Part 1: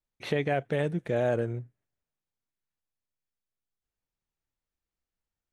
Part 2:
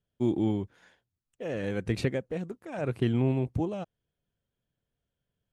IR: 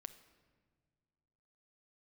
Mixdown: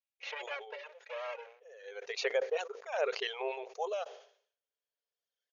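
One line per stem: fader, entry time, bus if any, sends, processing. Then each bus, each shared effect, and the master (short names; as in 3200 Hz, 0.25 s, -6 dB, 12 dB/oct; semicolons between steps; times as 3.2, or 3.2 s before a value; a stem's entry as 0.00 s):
-8.5 dB, 0.00 s, no send, minimum comb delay 3.6 ms; bell 2600 Hz +11 dB 0.81 oct
+2.5 dB, 0.20 s, send -23.5 dB, high shelf 3600 Hz +7 dB; auto duck -22 dB, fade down 1.30 s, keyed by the first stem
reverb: on, pre-delay 6 ms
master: reverb removal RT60 2 s; brick-wall FIR band-pass 400–6900 Hz; sustainer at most 110 dB/s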